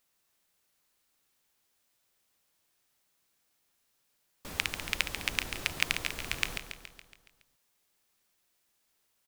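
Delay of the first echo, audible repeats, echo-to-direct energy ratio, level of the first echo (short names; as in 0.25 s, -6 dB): 0.14 s, 6, -7.0 dB, -8.5 dB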